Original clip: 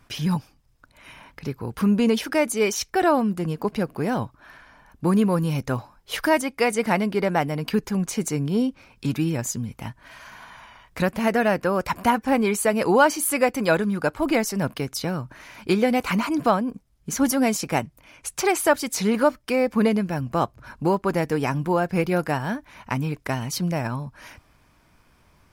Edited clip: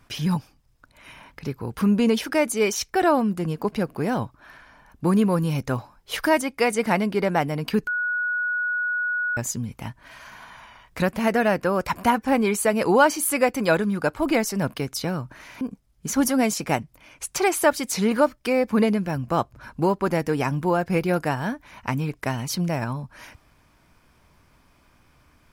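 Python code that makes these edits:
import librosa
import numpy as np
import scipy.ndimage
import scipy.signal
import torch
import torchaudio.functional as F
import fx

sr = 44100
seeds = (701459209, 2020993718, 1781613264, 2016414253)

y = fx.edit(x, sr, fx.bleep(start_s=7.87, length_s=1.5, hz=1460.0, db=-22.0),
    fx.cut(start_s=15.61, length_s=1.03), tone=tone)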